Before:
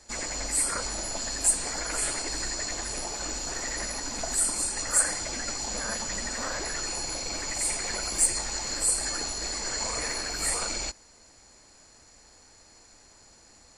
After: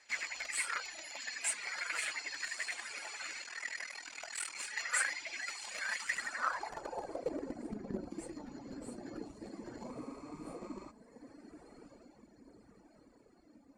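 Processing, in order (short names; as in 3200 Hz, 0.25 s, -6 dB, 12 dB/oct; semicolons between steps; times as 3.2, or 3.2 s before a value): 6.69–8.11 tilt shelf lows +7 dB, about 730 Hz; on a send: diffused feedback echo 1.239 s, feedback 49%, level -8 dB; on the sum: reverb removal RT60 1.8 s; 9.98–10.89 spectral repair 830–8400 Hz before; flange 0.16 Hz, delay 0.1 ms, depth 9.4 ms, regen +59%; 3.42–4.55 ring modulator 20 Hz; in parallel at -8 dB: bit-crush 5-bit; on the sum: band-pass sweep 2200 Hz -> 250 Hz, 6.03–7.75; gain +8 dB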